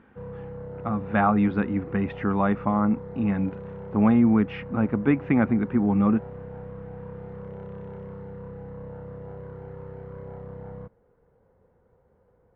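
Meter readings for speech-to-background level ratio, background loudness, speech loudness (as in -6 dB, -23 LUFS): 15.5 dB, -39.5 LUFS, -24.0 LUFS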